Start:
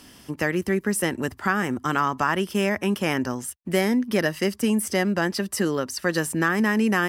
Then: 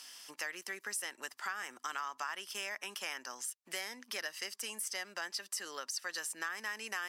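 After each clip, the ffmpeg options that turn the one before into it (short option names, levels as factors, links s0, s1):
-af "highpass=960,equalizer=f=5800:t=o:w=1.5:g=7.5,acompressor=threshold=0.0178:ratio=2.5,volume=0.562"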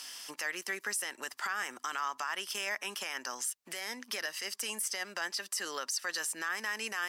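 -af "alimiter=level_in=2.11:limit=0.0631:level=0:latency=1:release=24,volume=0.473,volume=2.11"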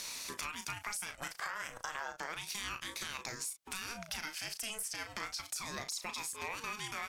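-filter_complex "[0:a]acompressor=threshold=0.01:ratio=5,asplit=2[s0][s1];[s1]adelay=36,volume=0.398[s2];[s0][s2]amix=inputs=2:normalize=0,aeval=exprs='val(0)*sin(2*PI*490*n/s+490*0.55/0.32*sin(2*PI*0.32*n/s))':c=same,volume=1.78"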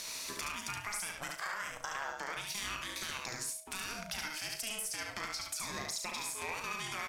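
-filter_complex "[0:a]aeval=exprs='val(0)+0.000562*sin(2*PI*640*n/s)':c=same,asplit=2[s0][s1];[s1]aecho=0:1:72|144|216:0.668|0.12|0.0217[s2];[s0][s2]amix=inputs=2:normalize=0"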